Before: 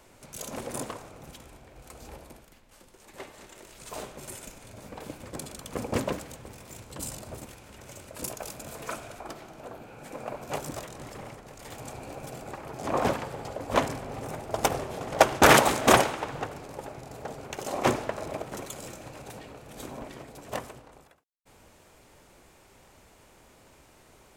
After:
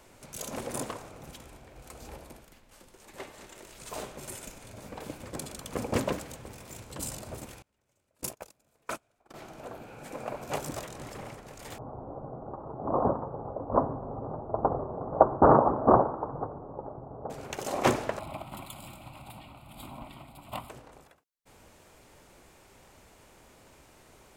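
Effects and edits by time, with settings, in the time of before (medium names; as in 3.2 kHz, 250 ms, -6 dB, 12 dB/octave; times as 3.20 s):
7.62–9.34 s: gate -37 dBFS, range -30 dB
11.78–17.30 s: steep low-pass 1.2 kHz 48 dB/octave
18.19–20.70 s: static phaser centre 1.7 kHz, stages 6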